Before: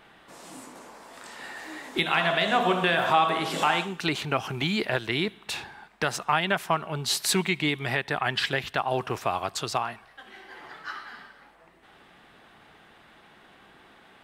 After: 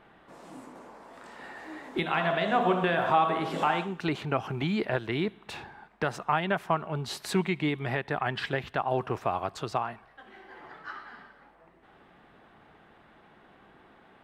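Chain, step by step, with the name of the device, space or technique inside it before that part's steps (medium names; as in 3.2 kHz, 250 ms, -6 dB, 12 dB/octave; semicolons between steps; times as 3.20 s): through cloth (treble shelf 2.5 kHz -15 dB)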